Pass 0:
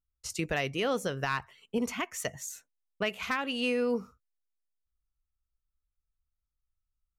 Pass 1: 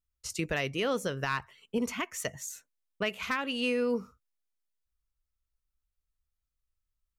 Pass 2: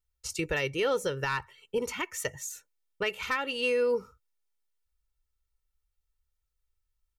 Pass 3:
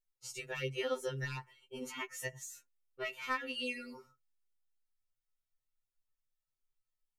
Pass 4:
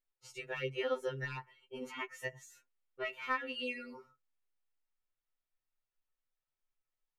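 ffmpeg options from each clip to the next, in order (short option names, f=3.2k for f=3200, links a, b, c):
-af "equalizer=f=750:t=o:w=0.22:g=-5.5"
-af "aecho=1:1:2.2:0.66"
-af "afftfilt=real='re*2.45*eq(mod(b,6),0)':imag='im*2.45*eq(mod(b,6),0)':win_size=2048:overlap=0.75,volume=-6dB"
-af "bass=f=250:g=-5,treble=f=4k:g=-13,volume=1.5dB"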